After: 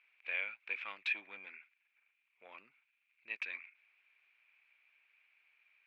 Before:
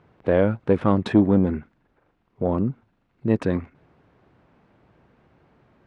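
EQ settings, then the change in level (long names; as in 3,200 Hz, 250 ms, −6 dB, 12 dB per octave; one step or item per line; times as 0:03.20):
four-pole ladder band-pass 2,500 Hz, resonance 85%
+4.0 dB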